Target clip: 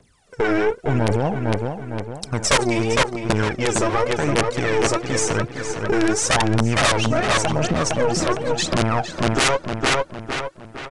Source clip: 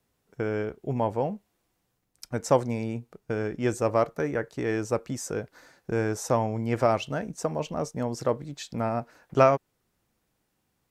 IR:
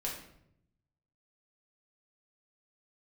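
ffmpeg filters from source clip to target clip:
-filter_complex "[0:a]lowshelf=frequency=360:gain=-4.5,asettb=1/sr,asplit=3[link_01][link_02][link_03];[link_01]atrim=end=3.664[link_04];[link_02]atrim=start=3.66:end=4.06,asetpts=PTS-STARTPTS,afade=type=in:duration=0.004:curve=qsin,afade=type=out:start_time=0.396:duration=0.004:curve=qsin,acompressor=threshold=-23dB:ratio=6[link_05];[link_03]atrim=start=4.056[link_06];[link_04][link_05]acrossfade=duration=0.004:curve1=hsin:curve2=qsin[link_07];[link_07][link_06]acrossfade=duration=0.004:curve1=qsin:curve2=hsin,aphaser=in_gain=1:out_gain=1:delay=3.2:decay=0.8:speed=0.91:type=triangular,asplit=2[link_08][link_09];[link_09]asoftclip=type=tanh:threshold=-22dB,volume=-7dB[link_10];[link_08][link_10]amix=inputs=2:normalize=0,aeval=exprs='0.562*(cos(1*acos(clip(val(0)/0.562,-1,1)))-cos(1*PI/2))+0.0282*(cos(2*acos(clip(val(0)/0.562,-1,1)))-cos(2*PI/2))+0.0631*(cos(8*acos(clip(val(0)/0.562,-1,1)))-cos(8*PI/2))':channel_layout=same,aeval=exprs='(mod(3.16*val(0)+1,2)-1)/3.16':channel_layout=same,asplit=2[link_11][link_12];[link_12]adelay=458,lowpass=frequency=4300:poles=1,volume=-9dB,asplit=2[link_13][link_14];[link_14]adelay=458,lowpass=frequency=4300:poles=1,volume=0.45,asplit=2[link_15][link_16];[link_16]adelay=458,lowpass=frequency=4300:poles=1,volume=0.45,asplit=2[link_17][link_18];[link_18]adelay=458,lowpass=frequency=4300:poles=1,volume=0.45,asplit=2[link_19][link_20];[link_20]adelay=458,lowpass=frequency=4300:poles=1,volume=0.45[link_21];[link_13][link_15][link_17][link_19][link_21]amix=inputs=5:normalize=0[link_22];[link_11][link_22]amix=inputs=2:normalize=0,aresample=22050,aresample=44100,alimiter=level_in=18dB:limit=-1dB:release=50:level=0:latency=1,volume=-8.5dB"

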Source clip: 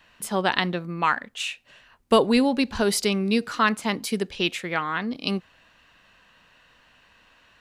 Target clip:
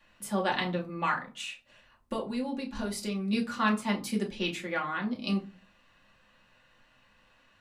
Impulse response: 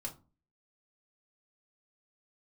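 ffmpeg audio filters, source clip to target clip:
-filter_complex "[0:a]asettb=1/sr,asplit=3[link_01][link_02][link_03];[link_01]atrim=end=1.334[link_04];[link_02]atrim=start=1.33:end=3.33,asetpts=PTS-STARTPTS,afade=type=in:duration=0.004:curve=qsin,afade=type=out:start_time=1.996:duration=0.004:curve=qsin,acompressor=threshold=-27dB:ratio=4[link_05];[link_03]atrim=start=3.326[link_06];[link_04][link_05]acrossfade=duration=0.004:curve1=hsin:curve2=qsin[link_07];[link_07][link_06]acrossfade=duration=0.004:curve1=qsin:curve2=hsin[link_08];[1:a]atrim=start_sample=2205,asetrate=41454,aresample=44100[link_09];[link_08][link_09]afir=irnorm=-1:irlink=0,volume=-5dB"

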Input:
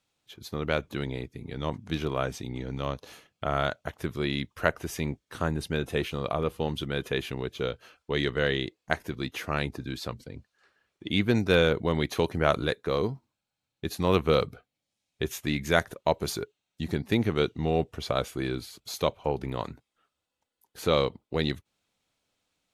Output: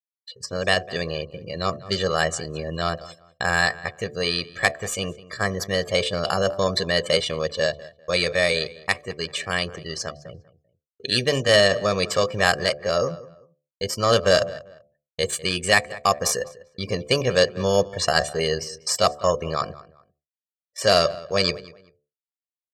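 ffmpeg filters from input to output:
ffmpeg -i in.wav -filter_complex "[0:a]asplit=2[link_01][link_02];[link_02]acrusher=samples=9:mix=1:aa=0.000001,volume=-7.5dB[link_03];[link_01][link_03]amix=inputs=2:normalize=0,lowpass=6500,aecho=1:1:2.1:0.65,acontrast=37,bass=frequency=250:gain=-8,treble=frequency=4000:gain=10,afftdn=noise_reduction=25:noise_floor=-35,bandreject=frequency=60:width_type=h:width=6,bandreject=frequency=120:width_type=h:width=6,bandreject=frequency=180:width_type=h:width=6,bandreject=frequency=240:width_type=h:width=6,bandreject=frequency=300:width_type=h:width=6,bandreject=frequency=360:width_type=h:width=6,bandreject=frequency=420:width_type=h:width=6,bandreject=frequency=480:width_type=h:width=6,bandreject=frequency=540:width_type=h:width=6,bandreject=frequency=600:width_type=h:width=6,agate=range=-33dB:threshold=-40dB:ratio=3:detection=peak,asplit=2[link_04][link_05];[link_05]adelay=195,lowpass=frequency=2200:poles=1,volume=-18dB,asplit=2[link_06][link_07];[link_07]adelay=195,lowpass=frequency=2200:poles=1,volume=0.28[link_08];[link_06][link_08]amix=inputs=2:normalize=0[link_09];[link_04][link_09]amix=inputs=2:normalize=0,dynaudnorm=framelen=370:gausssize=7:maxgain=3.5dB,asetrate=53981,aresample=44100,atempo=0.816958,equalizer=frequency=700:width_type=o:width=1.2:gain=-5.5,volume=1dB" out.wav

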